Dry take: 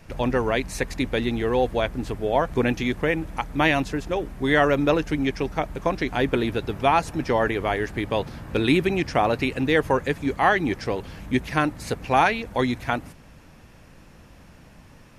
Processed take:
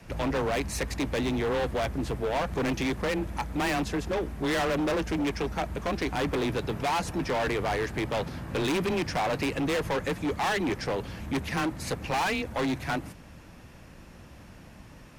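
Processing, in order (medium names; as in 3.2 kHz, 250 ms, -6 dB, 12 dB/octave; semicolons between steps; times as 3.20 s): frequency shift +18 Hz; overload inside the chain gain 25 dB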